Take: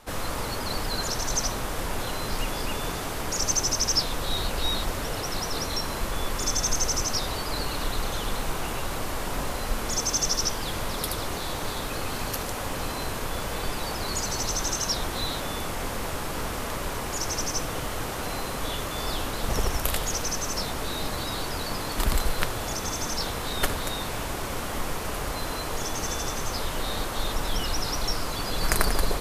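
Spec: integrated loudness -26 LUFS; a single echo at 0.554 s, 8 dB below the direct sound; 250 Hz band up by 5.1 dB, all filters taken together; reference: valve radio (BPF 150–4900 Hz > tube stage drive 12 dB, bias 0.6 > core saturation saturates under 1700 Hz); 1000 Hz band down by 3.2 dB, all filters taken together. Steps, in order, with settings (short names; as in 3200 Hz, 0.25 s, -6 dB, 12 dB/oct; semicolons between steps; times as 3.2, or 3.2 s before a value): BPF 150–4900 Hz; bell 250 Hz +7.5 dB; bell 1000 Hz -4.5 dB; echo 0.554 s -8 dB; tube stage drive 12 dB, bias 0.6; core saturation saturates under 1700 Hz; gain +8.5 dB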